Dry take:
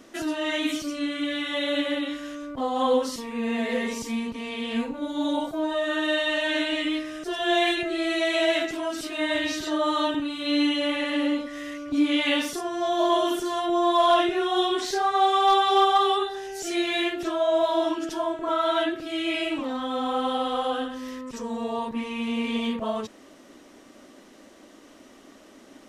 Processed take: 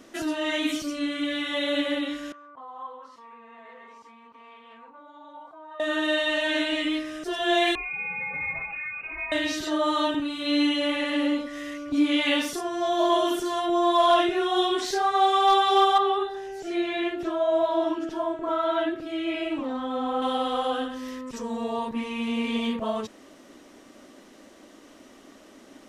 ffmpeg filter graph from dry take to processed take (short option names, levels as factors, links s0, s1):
-filter_complex "[0:a]asettb=1/sr,asplit=3[s0][s1][s2];[s0]atrim=end=2.324[s3];[s1]atrim=start=2.32:end=5.8,asetpts=PTS-STARTPTS,afade=t=in:d=0.004:c=qsin,afade=t=out:st=3.476:d=0.004:c=qsin,acompressor=threshold=0.0251:ratio=2.5:attack=3.2:release=140:knee=1:detection=peak,bandpass=f=1100:t=q:w=3.3[s4];[s2]atrim=start=5.796[s5];[s3][s4]acrossfade=d=0.004:c1=hsin:c2=qsin[s6];[s6][s5]acrossfade=d=0.004:c1=qsin:c2=hsin,asettb=1/sr,asplit=3[s7][s8][s9];[s7]atrim=end=7.754[s10];[s8]atrim=start=7.75:end=9.32,asetpts=PTS-STARTPTS,afade=t=in:d=0.004:c=qsin,afade=t=out:st=1.566:d=0.004:c=qsin,lowpass=f=2400:t=q:w=0.5098,lowpass=f=2400:t=q:w=0.6013,lowpass=f=2400:t=q:w=0.9,lowpass=f=2400:t=q:w=2.563,afreqshift=-2800,acrossover=split=130|3000[s11][s12][s13];[s12]acompressor=threshold=0.0178:ratio=5:attack=3.2:release=140:knee=2.83:detection=peak[s14];[s11][s14][s13]amix=inputs=3:normalize=0[s15];[s9]atrim=start=9.316[s16];[s10][s15]acrossfade=d=0.004:c1=hsin:c2=qsin[s17];[s17][s16]acrossfade=d=0.004:c1=qsin:c2=hsin,asettb=1/sr,asplit=3[s18][s19][s20];[s18]atrim=end=15.984[s21];[s19]atrim=start=15.98:end=20.22,asetpts=PTS-STARTPTS,afade=t=in:d=0.004:c=qsin,afade=t=out:st=4.236:d=0.004:c=qsin,highshelf=f=2200:g=-9,acrossover=split=4400[s22][s23];[s23]acompressor=threshold=0.002:ratio=4:attack=1:release=60[s24];[s22][s24]amix=inputs=2:normalize=0[s25];[s20]atrim=start=20.216[s26];[s21][s25]acrossfade=d=0.004:c1=hsin:c2=qsin[s27];[s27][s26]acrossfade=d=0.004:c1=qsin:c2=hsin"